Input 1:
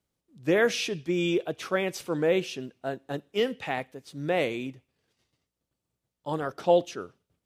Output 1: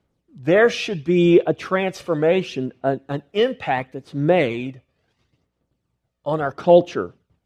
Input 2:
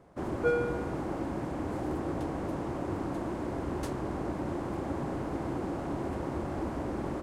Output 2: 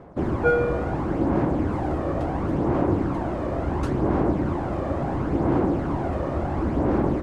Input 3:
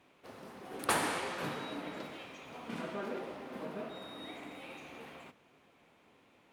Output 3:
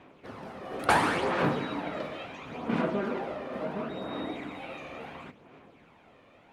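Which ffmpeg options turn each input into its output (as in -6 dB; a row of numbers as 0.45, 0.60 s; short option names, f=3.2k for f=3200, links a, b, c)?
-af "aphaser=in_gain=1:out_gain=1:delay=1.7:decay=0.42:speed=0.72:type=sinusoidal,aemphasis=mode=reproduction:type=75kf,volume=8.5dB"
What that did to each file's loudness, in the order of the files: +8.5, +9.5, +8.0 LU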